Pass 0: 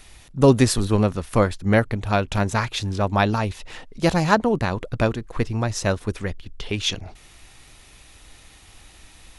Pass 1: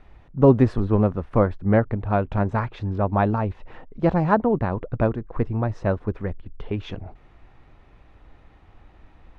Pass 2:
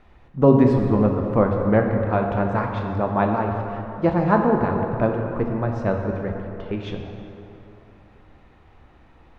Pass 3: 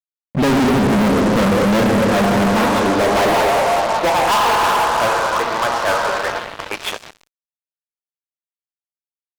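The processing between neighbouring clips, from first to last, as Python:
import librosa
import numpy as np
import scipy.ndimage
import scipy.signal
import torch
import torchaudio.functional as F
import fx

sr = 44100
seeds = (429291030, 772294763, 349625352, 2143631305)

y1 = scipy.signal.sosfilt(scipy.signal.butter(2, 1200.0, 'lowpass', fs=sr, output='sos'), x)
y2 = fx.low_shelf(y1, sr, hz=70.0, db=-8.0)
y2 = fx.rev_plate(y2, sr, seeds[0], rt60_s=3.0, hf_ratio=0.55, predelay_ms=0, drr_db=2.0)
y3 = fx.filter_sweep_highpass(y2, sr, from_hz=190.0, to_hz=1000.0, start_s=2.31, end_s=4.38, q=1.7)
y3 = fx.fuzz(y3, sr, gain_db=34.0, gate_db=-40.0)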